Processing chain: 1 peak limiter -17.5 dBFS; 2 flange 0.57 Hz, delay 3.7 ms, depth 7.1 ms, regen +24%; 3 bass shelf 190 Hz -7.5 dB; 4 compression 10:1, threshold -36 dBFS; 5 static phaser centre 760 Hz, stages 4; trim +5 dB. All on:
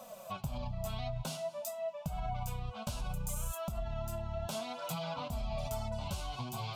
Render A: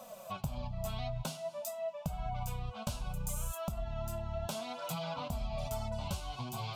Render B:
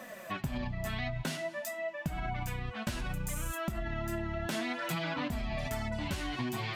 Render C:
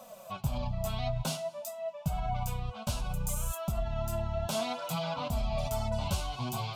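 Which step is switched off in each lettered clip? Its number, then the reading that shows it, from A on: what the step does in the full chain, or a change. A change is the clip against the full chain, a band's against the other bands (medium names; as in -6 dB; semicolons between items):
1, mean gain reduction 1.5 dB; 5, 2 kHz band +11.0 dB; 4, mean gain reduction 4.0 dB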